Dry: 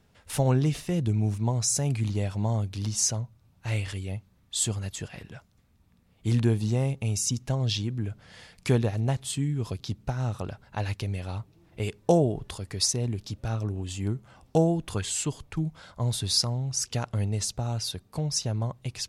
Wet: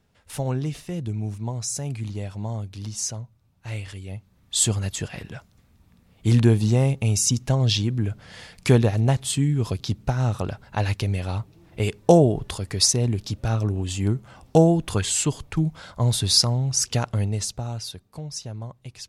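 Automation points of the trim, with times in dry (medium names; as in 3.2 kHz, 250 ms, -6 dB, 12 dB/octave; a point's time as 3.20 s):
4.01 s -3 dB
4.57 s +6.5 dB
16.94 s +6.5 dB
18.21 s -5.5 dB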